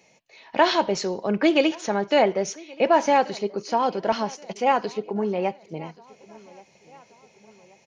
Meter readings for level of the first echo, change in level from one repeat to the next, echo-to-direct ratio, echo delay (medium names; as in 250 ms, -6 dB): -23.5 dB, -6.0 dB, -22.5 dB, 1128 ms